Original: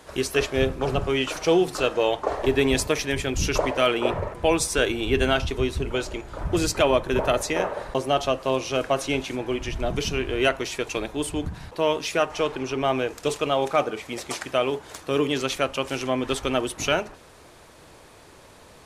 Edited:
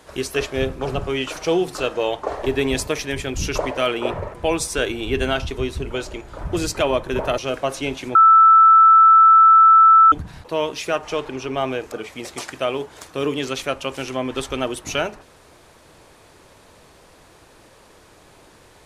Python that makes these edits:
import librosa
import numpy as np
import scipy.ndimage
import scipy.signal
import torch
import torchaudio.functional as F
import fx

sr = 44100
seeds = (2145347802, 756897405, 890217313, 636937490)

y = fx.edit(x, sr, fx.cut(start_s=7.38, length_s=1.27),
    fx.bleep(start_s=9.42, length_s=1.97, hz=1320.0, db=-7.0),
    fx.cut(start_s=13.19, length_s=0.66), tone=tone)